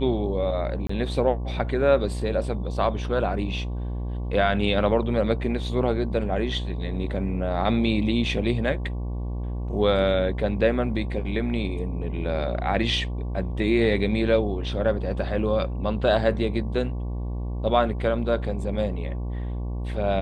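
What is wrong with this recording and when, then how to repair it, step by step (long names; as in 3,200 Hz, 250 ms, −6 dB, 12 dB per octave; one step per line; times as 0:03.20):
mains buzz 60 Hz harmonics 19 −29 dBFS
0:00.87–0:00.89: drop-out 24 ms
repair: hum removal 60 Hz, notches 19
repair the gap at 0:00.87, 24 ms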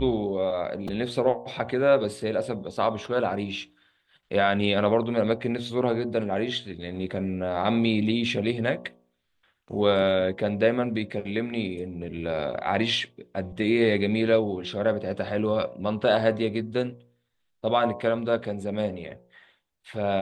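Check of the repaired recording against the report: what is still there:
none of them is left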